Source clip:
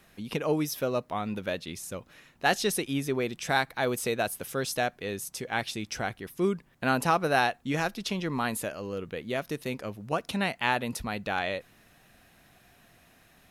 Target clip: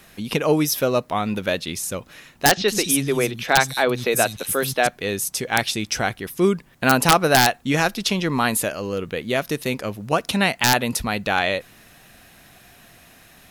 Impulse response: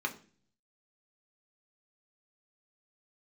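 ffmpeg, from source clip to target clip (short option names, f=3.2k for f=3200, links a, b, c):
-filter_complex "[0:a]highshelf=f=2.7k:g=4.5,asettb=1/sr,asplit=3[a][b][c];[a]atrim=end=2.494[d];[b]atrim=start=2.49:end=4.87,asetpts=PTS-STARTPTS,afade=t=in:d=0.004:c=qsin,afade=t=out:st=2.376:d=0.004:c=qsin,acrossover=split=210|4400[e][f][g];[e]adelay=80[h];[g]adelay=190[i];[h][f][i]amix=inputs=3:normalize=0,atrim=end_sample=104958[j];[c]atrim=start=4.866[k];[d][j]acrossfade=d=0.004:c1=hsin:c2=qsin[l];[l][k]acrossfade=d=0.004:c1=qsin:c2=hsin,aeval=exprs='(mod(3.76*val(0)+1,2)-1)/3.76':c=same,volume=8.5dB"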